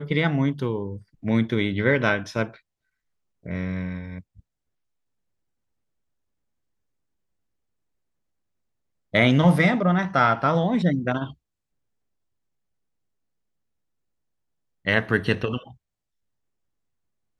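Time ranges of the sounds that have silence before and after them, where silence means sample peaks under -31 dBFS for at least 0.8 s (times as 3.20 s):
3.46–4.19 s
9.14–11.30 s
14.87–15.57 s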